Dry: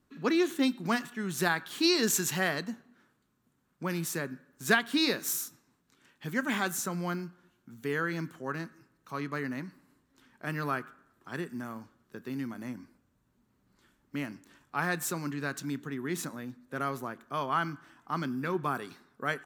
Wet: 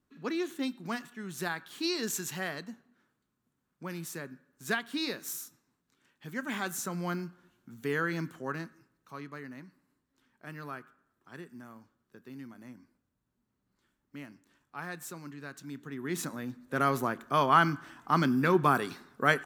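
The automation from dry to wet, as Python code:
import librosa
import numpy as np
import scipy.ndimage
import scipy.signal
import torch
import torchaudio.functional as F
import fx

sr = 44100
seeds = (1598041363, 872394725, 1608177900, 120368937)

y = fx.gain(x, sr, db=fx.line((6.27, -6.5), (7.22, 0.5), (8.41, 0.5), (9.41, -9.5), (15.59, -9.5), (16.14, 0.0), (17.01, 7.0)))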